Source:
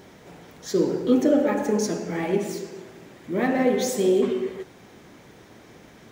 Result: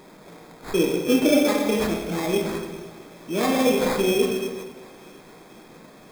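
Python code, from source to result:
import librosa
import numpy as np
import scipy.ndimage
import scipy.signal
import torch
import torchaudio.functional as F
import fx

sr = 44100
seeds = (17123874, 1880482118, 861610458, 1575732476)

y = scipy.signal.sosfilt(scipy.signal.butter(4, 150.0, 'highpass', fs=sr, output='sos'), x)
y = fx.peak_eq(y, sr, hz=9700.0, db=14.0, octaves=0.24)
y = fx.sample_hold(y, sr, seeds[0], rate_hz=2900.0, jitter_pct=0)
y = fx.echo_thinned(y, sr, ms=474, feedback_pct=69, hz=420.0, wet_db=-23.0)
y = fx.room_shoebox(y, sr, seeds[1], volume_m3=200.0, walls='mixed', distance_m=0.56)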